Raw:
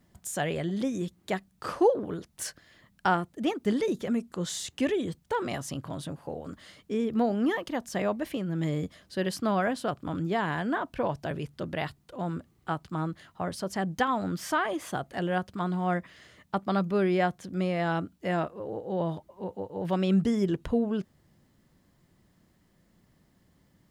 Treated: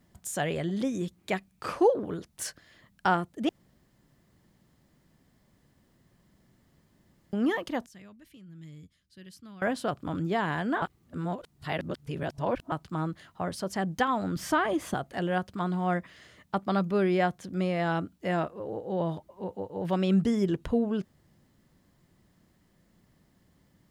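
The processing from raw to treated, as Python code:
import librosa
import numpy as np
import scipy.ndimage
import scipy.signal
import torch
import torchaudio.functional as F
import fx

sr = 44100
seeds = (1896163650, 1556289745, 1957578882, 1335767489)

y = fx.peak_eq(x, sr, hz=2400.0, db=8.5, octaves=0.26, at=(1.18, 1.78))
y = fx.tone_stack(y, sr, knobs='6-0-2', at=(7.86, 9.62))
y = fx.low_shelf(y, sr, hz=280.0, db=10.5, at=(14.36, 14.94))
y = fx.edit(y, sr, fx.room_tone_fill(start_s=3.49, length_s=3.84),
    fx.reverse_span(start_s=10.82, length_s=1.9), tone=tone)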